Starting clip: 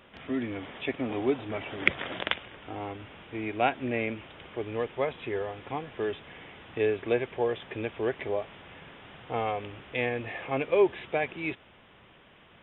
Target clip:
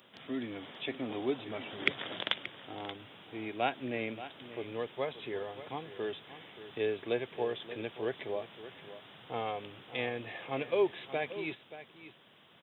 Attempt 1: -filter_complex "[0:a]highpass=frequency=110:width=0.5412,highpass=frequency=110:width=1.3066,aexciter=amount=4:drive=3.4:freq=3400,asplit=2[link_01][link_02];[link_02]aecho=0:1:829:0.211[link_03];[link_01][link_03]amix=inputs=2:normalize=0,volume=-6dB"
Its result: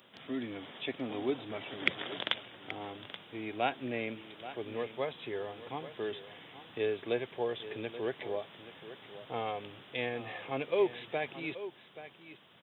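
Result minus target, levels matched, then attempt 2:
echo 249 ms late
-filter_complex "[0:a]highpass=frequency=110:width=0.5412,highpass=frequency=110:width=1.3066,aexciter=amount=4:drive=3.4:freq=3400,asplit=2[link_01][link_02];[link_02]aecho=0:1:580:0.211[link_03];[link_01][link_03]amix=inputs=2:normalize=0,volume=-6dB"

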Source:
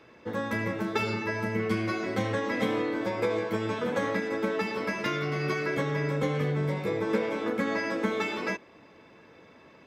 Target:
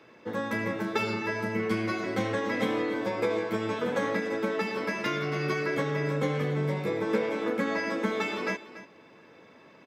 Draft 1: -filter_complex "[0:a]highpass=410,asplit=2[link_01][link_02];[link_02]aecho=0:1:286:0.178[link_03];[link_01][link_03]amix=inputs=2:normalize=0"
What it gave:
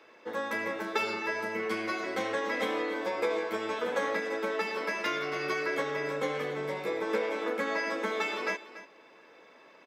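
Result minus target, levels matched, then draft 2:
125 Hz band −14.0 dB
-filter_complex "[0:a]highpass=120,asplit=2[link_01][link_02];[link_02]aecho=0:1:286:0.178[link_03];[link_01][link_03]amix=inputs=2:normalize=0"

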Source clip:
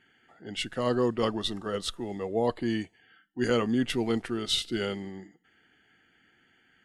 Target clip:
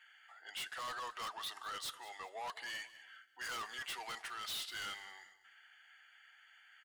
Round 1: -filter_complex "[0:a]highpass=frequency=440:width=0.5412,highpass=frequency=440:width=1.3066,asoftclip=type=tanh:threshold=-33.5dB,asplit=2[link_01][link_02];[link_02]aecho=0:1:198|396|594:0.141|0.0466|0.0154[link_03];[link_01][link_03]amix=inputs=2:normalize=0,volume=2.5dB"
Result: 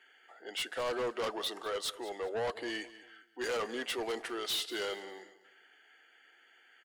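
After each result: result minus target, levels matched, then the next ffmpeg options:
500 Hz band +12.5 dB; soft clipping: distortion −4 dB
-filter_complex "[0:a]highpass=frequency=920:width=0.5412,highpass=frequency=920:width=1.3066,asoftclip=type=tanh:threshold=-33.5dB,asplit=2[link_01][link_02];[link_02]aecho=0:1:198|396|594:0.141|0.0466|0.0154[link_03];[link_01][link_03]amix=inputs=2:normalize=0,volume=2.5dB"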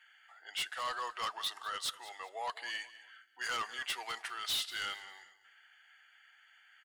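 soft clipping: distortion −5 dB
-filter_complex "[0:a]highpass=frequency=920:width=0.5412,highpass=frequency=920:width=1.3066,asoftclip=type=tanh:threshold=-42.5dB,asplit=2[link_01][link_02];[link_02]aecho=0:1:198|396|594:0.141|0.0466|0.0154[link_03];[link_01][link_03]amix=inputs=2:normalize=0,volume=2.5dB"

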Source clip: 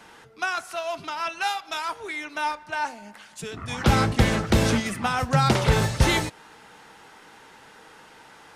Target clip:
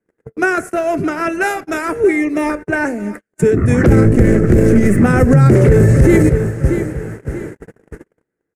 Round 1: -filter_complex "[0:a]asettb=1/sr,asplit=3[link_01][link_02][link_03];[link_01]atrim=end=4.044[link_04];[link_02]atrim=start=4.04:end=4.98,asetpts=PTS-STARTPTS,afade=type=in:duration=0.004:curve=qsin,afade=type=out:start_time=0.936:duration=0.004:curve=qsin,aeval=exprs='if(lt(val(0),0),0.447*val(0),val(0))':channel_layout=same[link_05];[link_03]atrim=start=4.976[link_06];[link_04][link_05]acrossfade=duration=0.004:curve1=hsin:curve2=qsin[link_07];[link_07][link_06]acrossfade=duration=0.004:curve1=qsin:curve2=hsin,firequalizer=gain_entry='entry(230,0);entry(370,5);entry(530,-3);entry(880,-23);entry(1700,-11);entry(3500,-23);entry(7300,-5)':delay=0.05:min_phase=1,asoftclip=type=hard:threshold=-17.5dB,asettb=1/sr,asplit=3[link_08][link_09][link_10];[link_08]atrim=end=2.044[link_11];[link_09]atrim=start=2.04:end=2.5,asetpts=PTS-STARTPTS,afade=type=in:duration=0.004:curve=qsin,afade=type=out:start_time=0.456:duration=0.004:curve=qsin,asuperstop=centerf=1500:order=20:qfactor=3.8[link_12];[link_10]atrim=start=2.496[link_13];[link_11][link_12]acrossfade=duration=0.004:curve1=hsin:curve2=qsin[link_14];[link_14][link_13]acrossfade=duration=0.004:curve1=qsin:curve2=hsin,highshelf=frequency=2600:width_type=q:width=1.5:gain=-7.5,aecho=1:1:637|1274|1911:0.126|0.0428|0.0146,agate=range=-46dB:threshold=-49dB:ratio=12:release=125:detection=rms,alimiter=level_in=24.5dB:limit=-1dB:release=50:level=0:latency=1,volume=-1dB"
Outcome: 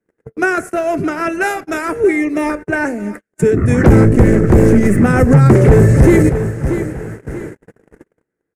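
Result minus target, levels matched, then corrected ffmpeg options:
hard clipping: distortion +27 dB
-filter_complex "[0:a]asettb=1/sr,asplit=3[link_01][link_02][link_03];[link_01]atrim=end=4.044[link_04];[link_02]atrim=start=4.04:end=4.98,asetpts=PTS-STARTPTS,afade=type=in:duration=0.004:curve=qsin,afade=type=out:start_time=0.936:duration=0.004:curve=qsin,aeval=exprs='if(lt(val(0),0),0.447*val(0),val(0))':channel_layout=same[link_05];[link_03]atrim=start=4.976[link_06];[link_04][link_05]acrossfade=duration=0.004:curve1=hsin:curve2=qsin[link_07];[link_07][link_06]acrossfade=duration=0.004:curve1=qsin:curve2=hsin,firequalizer=gain_entry='entry(230,0);entry(370,5);entry(530,-3);entry(880,-23);entry(1700,-11);entry(3500,-23);entry(7300,-5)':delay=0.05:min_phase=1,asoftclip=type=hard:threshold=-8.5dB,asettb=1/sr,asplit=3[link_08][link_09][link_10];[link_08]atrim=end=2.044[link_11];[link_09]atrim=start=2.04:end=2.5,asetpts=PTS-STARTPTS,afade=type=in:duration=0.004:curve=qsin,afade=type=out:start_time=0.456:duration=0.004:curve=qsin,asuperstop=centerf=1500:order=20:qfactor=3.8[link_12];[link_10]atrim=start=2.496[link_13];[link_11][link_12]acrossfade=duration=0.004:curve1=hsin:curve2=qsin[link_14];[link_14][link_13]acrossfade=duration=0.004:curve1=qsin:curve2=hsin,highshelf=frequency=2600:width_type=q:width=1.5:gain=-7.5,aecho=1:1:637|1274|1911:0.126|0.0428|0.0146,agate=range=-46dB:threshold=-49dB:ratio=12:release=125:detection=rms,alimiter=level_in=24.5dB:limit=-1dB:release=50:level=0:latency=1,volume=-1dB"

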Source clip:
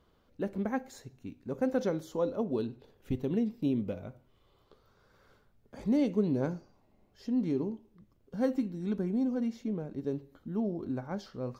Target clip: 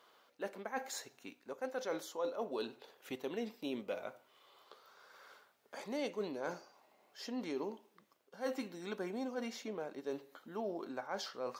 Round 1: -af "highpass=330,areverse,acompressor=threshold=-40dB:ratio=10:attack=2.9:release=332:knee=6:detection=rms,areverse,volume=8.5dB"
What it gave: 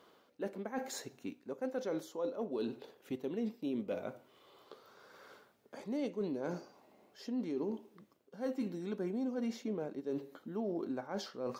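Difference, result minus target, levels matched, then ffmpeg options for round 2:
1,000 Hz band −5.5 dB
-af "highpass=720,areverse,acompressor=threshold=-40dB:ratio=10:attack=2.9:release=332:knee=6:detection=rms,areverse,volume=8.5dB"

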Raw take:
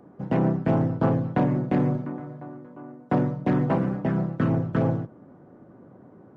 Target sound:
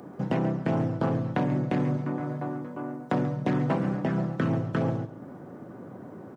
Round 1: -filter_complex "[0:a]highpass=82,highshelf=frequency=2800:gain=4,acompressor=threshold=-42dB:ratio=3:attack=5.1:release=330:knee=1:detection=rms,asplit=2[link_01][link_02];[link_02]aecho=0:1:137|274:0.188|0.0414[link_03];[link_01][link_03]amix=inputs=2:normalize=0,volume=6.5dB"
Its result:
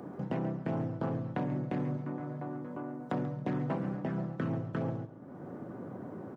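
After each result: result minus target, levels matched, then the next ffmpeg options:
downward compressor: peak gain reduction +7.5 dB; 4,000 Hz band −2.5 dB
-filter_complex "[0:a]highpass=82,highshelf=frequency=2800:gain=4,acompressor=threshold=-31dB:ratio=3:attack=5.1:release=330:knee=1:detection=rms,asplit=2[link_01][link_02];[link_02]aecho=0:1:137|274:0.188|0.0414[link_03];[link_01][link_03]amix=inputs=2:normalize=0,volume=6.5dB"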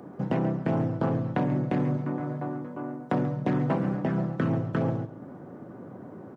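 4,000 Hz band −3.5 dB
-filter_complex "[0:a]highpass=82,highshelf=frequency=2800:gain=10.5,acompressor=threshold=-31dB:ratio=3:attack=5.1:release=330:knee=1:detection=rms,asplit=2[link_01][link_02];[link_02]aecho=0:1:137|274:0.188|0.0414[link_03];[link_01][link_03]amix=inputs=2:normalize=0,volume=6.5dB"

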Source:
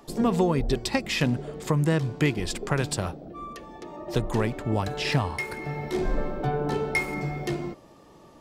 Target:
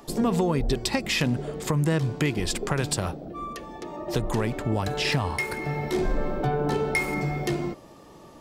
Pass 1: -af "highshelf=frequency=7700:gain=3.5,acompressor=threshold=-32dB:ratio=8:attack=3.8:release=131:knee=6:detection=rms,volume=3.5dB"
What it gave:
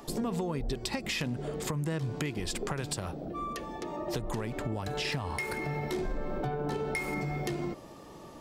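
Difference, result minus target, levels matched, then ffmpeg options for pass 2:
downward compressor: peak gain reduction +9.5 dB
-af "highshelf=frequency=7700:gain=3.5,acompressor=threshold=-21dB:ratio=8:attack=3.8:release=131:knee=6:detection=rms,volume=3.5dB"

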